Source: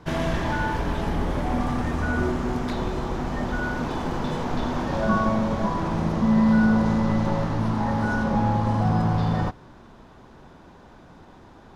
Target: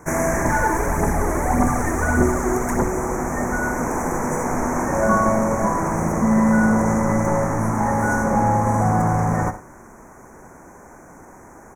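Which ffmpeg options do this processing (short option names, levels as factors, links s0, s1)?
-filter_complex "[0:a]asuperstop=centerf=3700:order=12:qfactor=1,bass=f=250:g=-6,treble=f=4000:g=14,aecho=1:1:65|103:0.251|0.126,asettb=1/sr,asplit=3[s0][s1][s2];[s0]atrim=end=0.454[s3];[s1]atrim=start=0.45:end=2.87,asetpts=PTS-STARTPTS,afade=t=in:d=0.004:c=qsin,afade=t=out:st=2.416:d=0.004:c=qsin,aphaser=in_gain=1:out_gain=1:delay=3.2:decay=0.46:speed=1.7:type=triangular[s4];[s2]atrim=start=2.866[s5];[s3][s4]acrossfade=d=0.004:c1=hsin:c2=qsin[s6];[s6][s5]acrossfade=d=0.004:c1=qsin:c2=hsin,volume=2"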